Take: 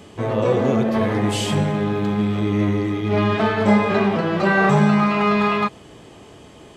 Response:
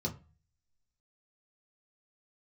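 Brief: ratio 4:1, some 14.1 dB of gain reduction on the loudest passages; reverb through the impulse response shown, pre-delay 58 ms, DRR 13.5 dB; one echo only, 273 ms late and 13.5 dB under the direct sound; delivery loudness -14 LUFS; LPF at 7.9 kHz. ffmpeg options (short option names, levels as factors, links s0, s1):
-filter_complex "[0:a]lowpass=7900,acompressor=threshold=0.0355:ratio=4,aecho=1:1:273:0.211,asplit=2[s0][s1];[1:a]atrim=start_sample=2205,adelay=58[s2];[s1][s2]afir=irnorm=-1:irlink=0,volume=0.158[s3];[s0][s3]amix=inputs=2:normalize=0,volume=5.62"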